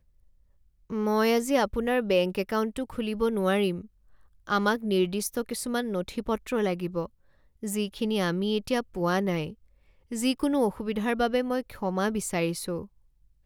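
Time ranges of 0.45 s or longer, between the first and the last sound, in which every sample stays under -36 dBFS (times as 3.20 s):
3.81–4.47 s
7.06–7.63 s
9.52–10.12 s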